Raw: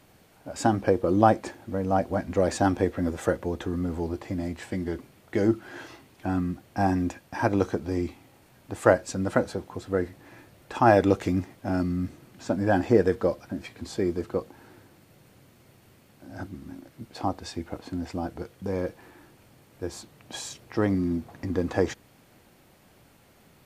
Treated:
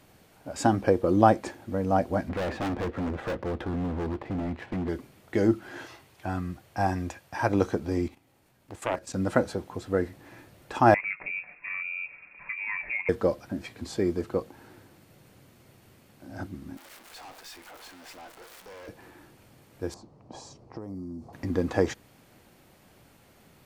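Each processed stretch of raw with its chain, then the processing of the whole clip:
0:02.29–0:04.89: high-frequency loss of the air 380 metres + leveller curve on the samples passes 1 + hard clipping −27.5 dBFS
0:05.85–0:07.50: high-pass filter 51 Hz + parametric band 250 Hz −9.5 dB 1 octave
0:08.08–0:09.14: high-shelf EQ 10,000 Hz +4 dB + output level in coarse steps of 13 dB + highs frequency-modulated by the lows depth 0.63 ms
0:10.94–0:13.09: comb filter 7 ms, depth 35% + downward compressor 2 to 1, threshold −38 dBFS + voice inversion scrambler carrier 2,600 Hz
0:16.77–0:18.88: converter with a step at zero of −36 dBFS + high-pass filter 800 Hz + tube saturation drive 43 dB, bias 0.55
0:19.94–0:21.33: low-pass that shuts in the quiet parts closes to 2,600 Hz, open at −19.5 dBFS + flat-topped bell 2,300 Hz −15 dB + downward compressor 12 to 1, threshold −34 dBFS
whole clip: no processing

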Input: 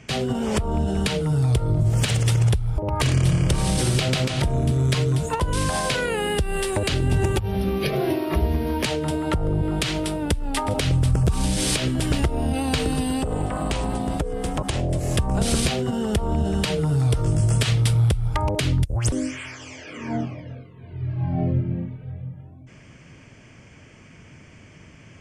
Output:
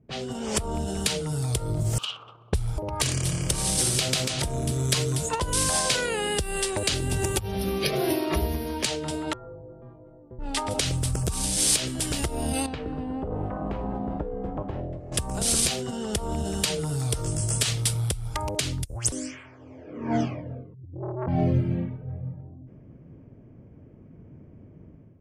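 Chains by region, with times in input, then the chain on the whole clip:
0:01.98–0:02.53: hold until the input has moved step −26.5 dBFS + pair of resonant band-passes 1,900 Hz, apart 1.3 octaves
0:09.33–0:10.39: low-pass with resonance 1,100 Hz, resonance Q 1.8 + stiff-string resonator 120 Hz, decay 0.58 s, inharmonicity 0.008
0:12.66–0:15.12: low-pass filter 1,400 Hz 6 dB per octave + tuned comb filter 100 Hz, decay 0.51 s
0:20.74–0:21.28: expanding power law on the bin magnitudes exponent 2.9 + saturating transformer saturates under 670 Hz
whole clip: low-pass that shuts in the quiet parts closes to 320 Hz, open at −18.5 dBFS; bass and treble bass −4 dB, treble +12 dB; automatic gain control; level −8 dB

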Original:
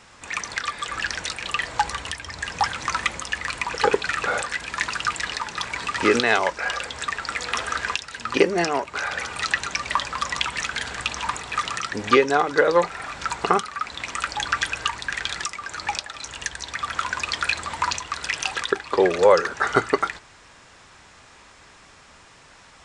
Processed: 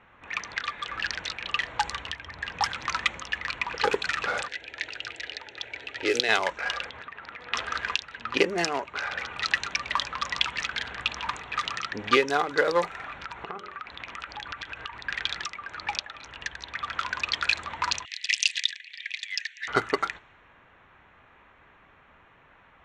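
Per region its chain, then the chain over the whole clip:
0:04.48–0:06.29: high-pass filter 95 Hz + phaser with its sweep stopped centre 460 Hz, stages 4
0:06.90–0:07.53: high-pass filter 70 Hz + downward compressor 10 to 1, threshold −30 dBFS + high-frequency loss of the air 60 metres
0:13.21–0:15.05: hum removal 45.77 Hz, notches 13 + downward compressor 5 to 1, threshold −28 dBFS
0:18.05–0:19.68: Butterworth high-pass 1,800 Hz 96 dB per octave + high-shelf EQ 3,800 Hz +8.5 dB
whole clip: adaptive Wiener filter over 9 samples; low-pass that shuts in the quiet parts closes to 2,200 Hz, open at −16 dBFS; parametric band 4,100 Hz +8.5 dB 2.2 octaves; level −6.5 dB

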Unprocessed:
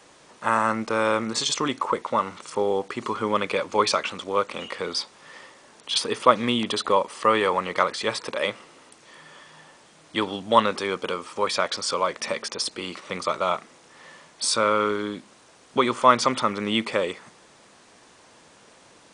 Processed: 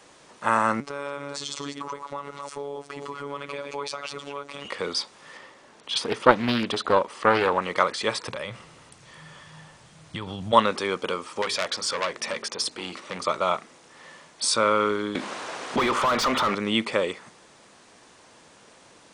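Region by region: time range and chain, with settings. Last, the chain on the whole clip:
0:00.80–0:04.65: delay that plays each chunk backwards 188 ms, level −8.5 dB + downward compressor 2.5 to 1, threshold −31 dBFS + phases set to zero 142 Hz
0:05.37–0:07.62: high-shelf EQ 5,600 Hz −8 dB + highs frequency-modulated by the lows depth 0.45 ms
0:08.28–0:10.53: low shelf with overshoot 190 Hz +11.5 dB, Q 1.5 + downward compressor 12 to 1, threshold −28 dBFS
0:11.42–0:13.24: mains-hum notches 50/100/150/200/250/300/350/400/450 Hz + saturating transformer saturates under 3,700 Hz
0:15.15–0:16.55: mid-hump overdrive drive 30 dB, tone 1,800 Hz, clips at −3 dBFS + downward compressor 2.5 to 1, threshold −25 dBFS
whole clip: no processing

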